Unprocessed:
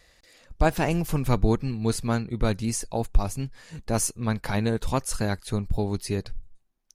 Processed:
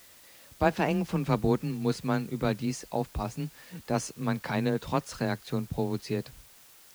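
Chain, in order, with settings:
frequency shifter +18 Hz
band-pass filter 130–4,700 Hz
background noise white −53 dBFS
level −2 dB

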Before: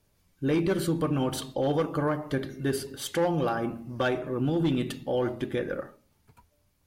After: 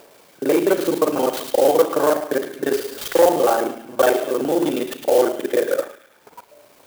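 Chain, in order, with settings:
reversed piece by piece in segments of 35 ms
upward compression, threshold −39 dBFS
high-pass filter 390 Hz 12 dB per octave
parametric band 530 Hz +9 dB 1.9 octaves
delay with a high-pass on its return 107 ms, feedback 59%, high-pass 2,800 Hz, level −4 dB
converter with an unsteady clock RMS 0.039 ms
level +6 dB

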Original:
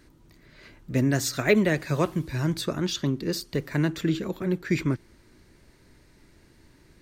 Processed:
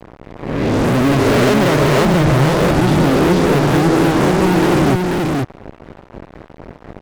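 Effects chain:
peak hold with a rise ahead of every peak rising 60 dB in 1.05 s
Bessel low-pass filter 650 Hz, order 2
low-shelf EQ 240 Hz −5.5 dB
in parallel at +2 dB: downward compressor, threshold −35 dBFS, peak gain reduction 17 dB
on the sum: fuzz pedal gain 41 dB, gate −46 dBFS
on a send: single-tap delay 486 ms −3 dB

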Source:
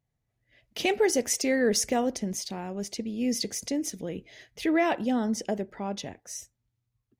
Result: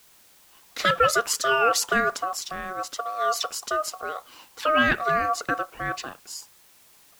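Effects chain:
ring modulation 930 Hz
dynamic equaliser 2,000 Hz, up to +6 dB, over −43 dBFS, Q 1.4
bit-depth reduction 10 bits, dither triangular
level +4.5 dB

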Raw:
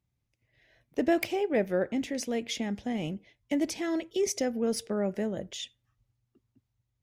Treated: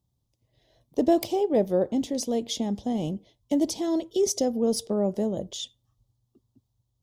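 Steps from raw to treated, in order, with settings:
flat-topped bell 1,900 Hz −16 dB 1.2 octaves
level +4.5 dB

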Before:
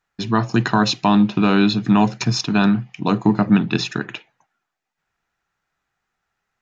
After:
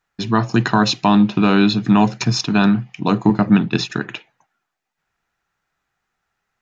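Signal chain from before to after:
0:03.30–0:03.90: noise gate −22 dBFS, range −8 dB
level +1.5 dB

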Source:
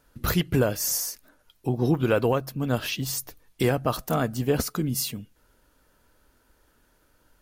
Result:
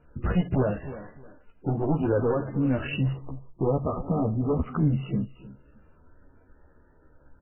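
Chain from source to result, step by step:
tilt shelving filter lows +5.5 dB, about 710 Hz
sine wavefolder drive 5 dB, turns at −7.5 dBFS
repeating echo 308 ms, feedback 20%, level −19 dB
brickwall limiter −13 dBFS, peak gain reduction 6.5 dB
multi-voice chorus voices 2, 0.47 Hz, delay 13 ms, depth 2.5 ms
0:03.13–0:04.64: linear-phase brick-wall low-pass 1,300 Hz
level −2 dB
MP3 8 kbit/s 8,000 Hz

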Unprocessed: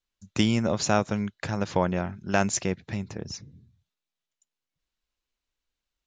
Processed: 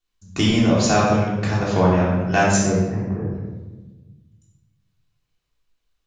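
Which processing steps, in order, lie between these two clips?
0:02.59–0:03.45: low-pass filter 1,500 Hz 24 dB per octave
rectangular room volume 760 cubic metres, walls mixed, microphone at 3.4 metres

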